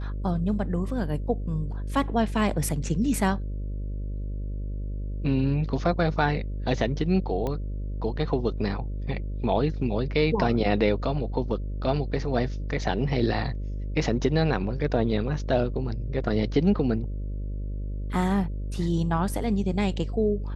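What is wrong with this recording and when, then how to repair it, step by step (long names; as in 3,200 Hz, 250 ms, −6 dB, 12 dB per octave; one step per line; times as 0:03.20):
mains buzz 50 Hz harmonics 12 −31 dBFS
0:07.47: click −18 dBFS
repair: click removal
hum removal 50 Hz, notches 12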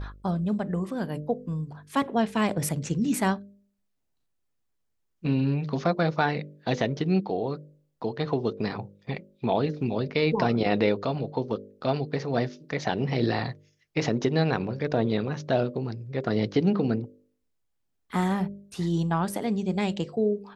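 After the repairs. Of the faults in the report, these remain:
none of them is left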